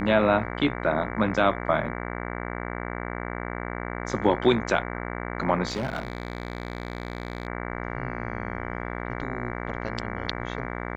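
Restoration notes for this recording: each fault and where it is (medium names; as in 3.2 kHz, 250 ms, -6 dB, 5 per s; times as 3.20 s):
buzz 60 Hz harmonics 38 -33 dBFS
5.68–7.47 s: clipped -24 dBFS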